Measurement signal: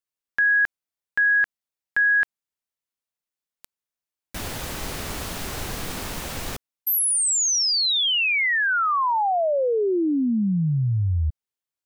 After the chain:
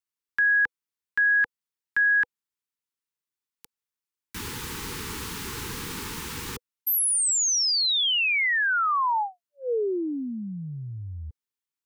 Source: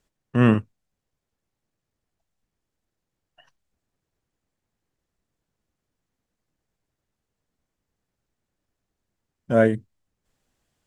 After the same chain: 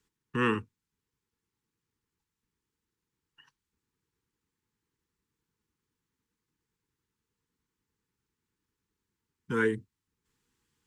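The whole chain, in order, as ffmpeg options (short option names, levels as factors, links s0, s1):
-filter_complex "[0:a]highpass=f=70:p=1,acrossover=split=380|570[s0][s1][s2];[s0]acompressor=threshold=0.0158:ratio=6:attack=49:release=31:knee=1:detection=rms[s3];[s3][s1][s2]amix=inputs=3:normalize=0,asuperstop=centerf=640:order=12:qfactor=1.9,volume=0.794"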